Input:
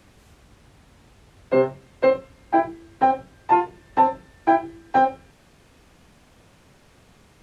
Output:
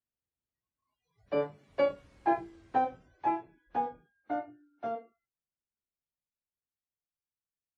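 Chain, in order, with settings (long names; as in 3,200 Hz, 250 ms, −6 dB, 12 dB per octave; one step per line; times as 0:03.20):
gliding playback speed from 114% → 77%
source passing by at 0:02.24, 15 m/s, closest 13 metres
noise reduction from a noise print of the clip's start 30 dB
level −8.5 dB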